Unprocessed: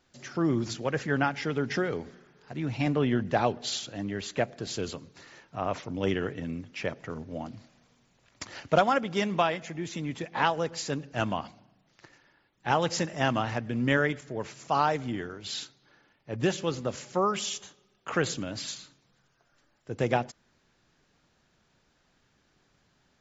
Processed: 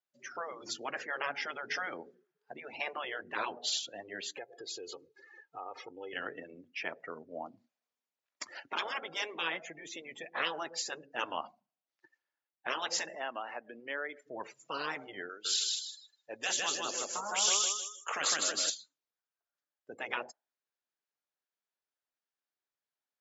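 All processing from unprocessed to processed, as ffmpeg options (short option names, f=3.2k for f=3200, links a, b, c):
-filter_complex "[0:a]asettb=1/sr,asplit=3[a][b][c];[a]atrim=end=4.374[d];[b]atrim=start=4.37:end=6.13,asetpts=PTS-STARTPTS,afade=t=in:d=0.004:c=qsin,afade=t=out:st=1.756:d=0.004:c=qsin,acompressor=threshold=-37dB:ratio=6:attack=3.2:release=140:knee=1:detection=peak,aecho=1:1:2.4:0.74,atrim=end_sample=77616[e];[c]atrim=start=6.126[f];[d][e]acrossfade=d=0.004:c1=hsin:c2=qsin[g];[g][f]acrossfade=d=0.004:c1=qsin:c2=hsin,asettb=1/sr,asplit=3[h][i][j];[h]atrim=end=13.154[k];[i]atrim=start=13.15:end=14.26,asetpts=PTS-STARTPTS,afade=t=in:d=0.004:c=qsin,afade=t=out:st=1.106:d=0.004:c=qsin,highpass=280,lowpass=6.7k,acompressor=threshold=-39dB:ratio=2:attack=3.2:release=140:knee=1:detection=peak[l];[j]atrim=start=14.256[m];[k][l]acrossfade=d=0.004:c1=hsin:c2=qsin[n];[n][m]acrossfade=d=0.004:c1=qsin:c2=hsin,asettb=1/sr,asplit=3[o][p][q];[o]atrim=end=15.294[r];[p]atrim=start=15.29:end=18.7,asetpts=PTS-STARTPTS,afade=t=in:d=0.004:c=qsin,afade=t=out:st=3.406:d=0.004:c=qsin,aemphasis=mode=production:type=bsi,aecho=1:1:156|312|468|624|780:0.708|0.29|0.119|0.0488|0.02,atrim=end_sample=150381[s];[q]atrim=start=18.696[t];[r][s]acrossfade=d=0.004:c1=hsin:c2=qsin[u];[u][t]acrossfade=d=0.004:c1=qsin:c2=hsin,afftdn=nr=27:nf=-43,afftfilt=real='re*lt(hypot(re,im),0.158)':imag='im*lt(hypot(re,im),0.158)':win_size=1024:overlap=0.75,highpass=500"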